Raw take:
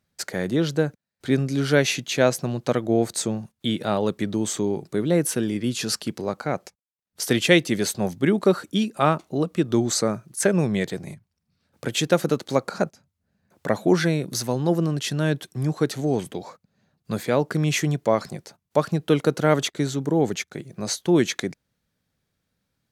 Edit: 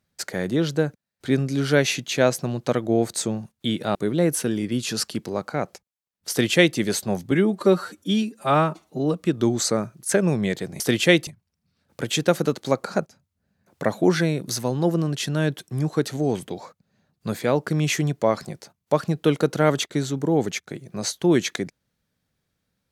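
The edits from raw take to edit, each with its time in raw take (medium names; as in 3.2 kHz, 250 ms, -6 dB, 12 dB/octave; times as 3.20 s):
3.95–4.87 s: delete
7.22–7.69 s: copy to 11.11 s
8.23–9.45 s: stretch 1.5×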